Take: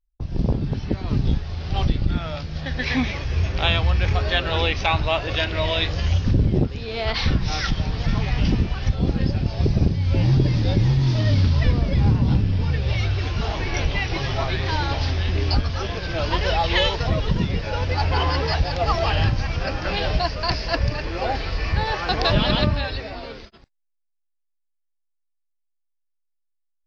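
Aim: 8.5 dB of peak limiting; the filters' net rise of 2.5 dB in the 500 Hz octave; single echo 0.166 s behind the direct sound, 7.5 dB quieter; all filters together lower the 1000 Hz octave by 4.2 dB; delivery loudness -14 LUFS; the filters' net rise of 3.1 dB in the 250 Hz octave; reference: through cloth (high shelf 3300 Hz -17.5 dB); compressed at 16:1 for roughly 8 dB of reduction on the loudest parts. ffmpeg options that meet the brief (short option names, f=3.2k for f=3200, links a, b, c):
-af "equalizer=f=250:t=o:g=3.5,equalizer=f=500:t=o:g=5,equalizer=f=1k:t=o:g=-6.5,acompressor=threshold=-20dB:ratio=16,alimiter=limit=-17.5dB:level=0:latency=1,highshelf=f=3.3k:g=-17.5,aecho=1:1:166:0.422,volume=14dB"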